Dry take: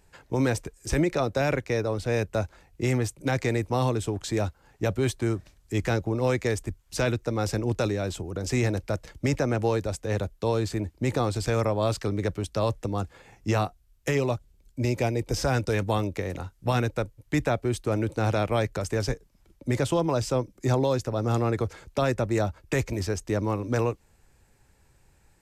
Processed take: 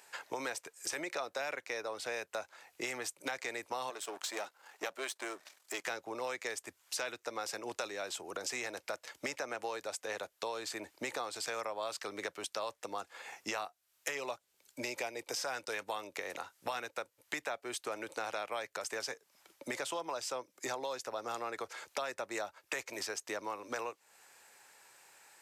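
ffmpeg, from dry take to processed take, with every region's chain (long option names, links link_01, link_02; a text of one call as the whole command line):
ffmpeg -i in.wav -filter_complex "[0:a]asettb=1/sr,asplit=3[link_01][link_02][link_03];[link_01]atrim=end=3.904[link_04];[link_02]atrim=start=3.9:end=5.87,asetpts=PTS-STARTPTS,afade=type=in:duration=0.004:curve=qsin,afade=type=out:start_time=1.966:duration=0.004:curve=qsin,aeval=exprs='if(lt(val(0),0),0.447*val(0),val(0))':channel_layout=same,highpass=250[link_05];[link_03]atrim=start=5.866[link_06];[link_04][link_05]acrossfade=duration=0.004:curve1=hsin:curve2=qsin[link_07];[link_07][link_06]acrossfade=duration=0.004:curve1=qsin:curve2=hsin,highpass=780,acompressor=threshold=-47dB:ratio=4,volume=8.5dB" out.wav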